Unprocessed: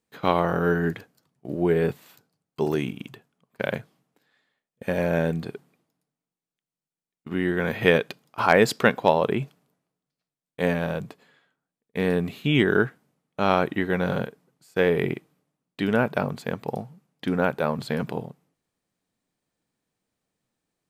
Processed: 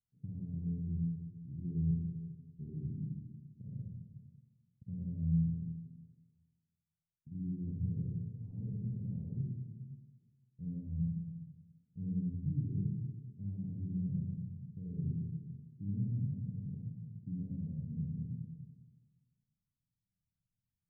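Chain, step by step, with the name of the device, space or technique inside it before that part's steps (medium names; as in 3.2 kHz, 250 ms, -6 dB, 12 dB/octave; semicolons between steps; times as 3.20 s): club heard from the street (peak limiter -12.5 dBFS, peak gain reduction 8 dB; low-pass 140 Hz 24 dB/octave; reverberation RT60 1.5 s, pre-delay 45 ms, DRR -5 dB); 7.93–9.35 s: flutter echo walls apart 11.1 m, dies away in 0.92 s; trim -4.5 dB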